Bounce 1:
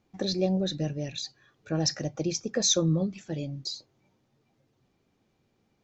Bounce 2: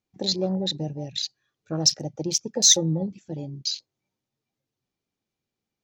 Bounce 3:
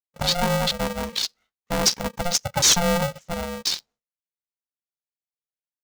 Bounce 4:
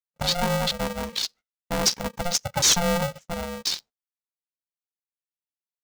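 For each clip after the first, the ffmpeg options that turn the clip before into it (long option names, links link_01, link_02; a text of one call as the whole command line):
ffmpeg -i in.wav -af "highshelf=frequency=2600:gain=11,asoftclip=type=hard:threshold=-7.5dB,afwtdn=0.0251" out.wav
ffmpeg -i in.wav -af "agate=range=-33dB:threshold=-49dB:ratio=3:detection=peak,aresample=16000,asoftclip=type=tanh:threshold=-16.5dB,aresample=44100,aeval=exprs='val(0)*sgn(sin(2*PI*350*n/s))':channel_layout=same,volume=4.5dB" out.wav
ffmpeg -i in.wav -af "agate=range=-27dB:threshold=-42dB:ratio=16:detection=peak,volume=-2dB" out.wav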